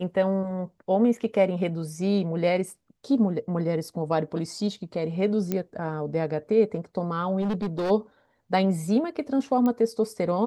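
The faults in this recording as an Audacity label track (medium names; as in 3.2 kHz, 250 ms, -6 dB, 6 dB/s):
5.520000	5.520000	pop -13 dBFS
7.410000	7.910000	clipped -23.5 dBFS
9.660000	9.660000	pop -16 dBFS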